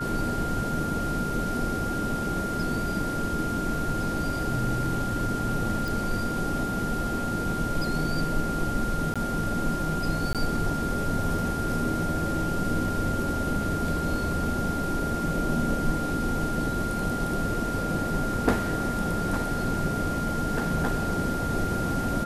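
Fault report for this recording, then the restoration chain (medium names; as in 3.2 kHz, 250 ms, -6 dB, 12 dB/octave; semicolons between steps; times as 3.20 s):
whine 1.4 kHz -31 dBFS
5.88 s: pop
9.14–9.16 s: dropout 16 ms
10.33–10.35 s: dropout 17 ms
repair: de-click; band-stop 1.4 kHz, Q 30; interpolate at 9.14 s, 16 ms; interpolate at 10.33 s, 17 ms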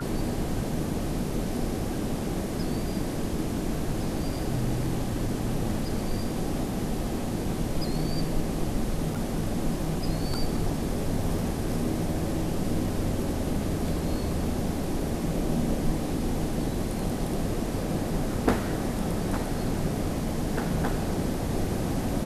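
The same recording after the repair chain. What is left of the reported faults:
nothing left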